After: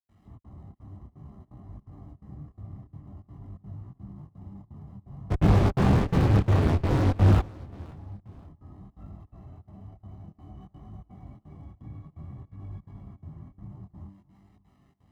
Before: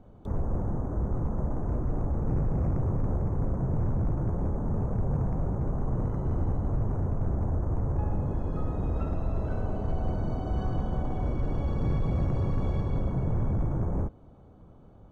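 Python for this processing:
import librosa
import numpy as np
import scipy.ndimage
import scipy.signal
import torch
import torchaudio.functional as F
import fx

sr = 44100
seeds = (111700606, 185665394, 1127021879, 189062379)

y = x + 0.5 * 10.0 ** (-43.0 / 20.0) * np.sign(x)
y = fx.notch(y, sr, hz=920.0, q=6.1)
y = fx.comb_fb(y, sr, f0_hz=98.0, decay_s=1.8, harmonics='all', damping=0.0, mix_pct=80)
y = fx.step_gate(y, sr, bpm=169, pattern='.xxx.xxx', floor_db=-60.0, edge_ms=4.5)
y = fx.over_compress(y, sr, threshold_db=-37.0, ratio=-1.0)
y = scipy.signal.sosfilt(scipy.signal.butter(2, 69.0, 'highpass', fs=sr, output='sos'), y)
y = y + 0.78 * np.pad(y, (int(1.0 * sr / 1000.0), 0))[:len(y)]
y = fx.fuzz(y, sr, gain_db=56.0, gate_db=-54.0, at=(5.3, 7.38), fade=0.02)
y = fx.high_shelf(y, sr, hz=2900.0, db=-8.5)
y = fx.echo_feedback(y, sr, ms=533, feedback_pct=33, wet_db=-21.5)
y = fx.detune_double(y, sr, cents=19)
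y = F.gain(torch.from_numpy(y), -1.5).numpy()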